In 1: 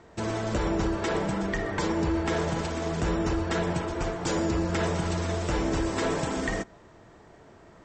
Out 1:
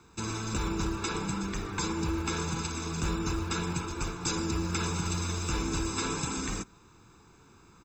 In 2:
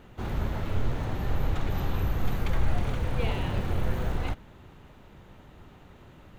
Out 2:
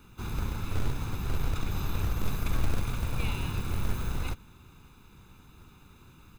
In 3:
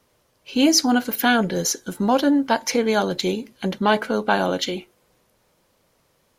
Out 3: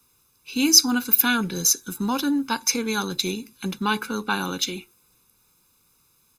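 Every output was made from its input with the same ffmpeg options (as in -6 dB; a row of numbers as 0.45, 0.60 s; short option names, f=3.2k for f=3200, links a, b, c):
-filter_complex "[0:a]aecho=1:1:0.8:0.93,acrossover=split=130[a][b];[a]acrusher=bits=3:mode=log:mix=0:aa=0.000001[c];[b]crystalizer=i=3:c=0[d];[c][d]amix=inputs=2:normalize=0,volume=-8dB"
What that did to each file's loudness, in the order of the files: -3.5, -2.5, -1.0 LU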